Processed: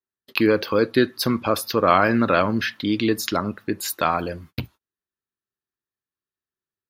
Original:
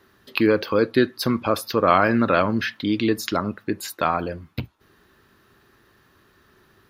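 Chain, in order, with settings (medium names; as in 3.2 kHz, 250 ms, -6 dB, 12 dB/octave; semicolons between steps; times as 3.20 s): gate -44 dBFS, range -41 dB; treble shelf 4.2 kHz +4.5 dB, from 3.86 s +9.5 dB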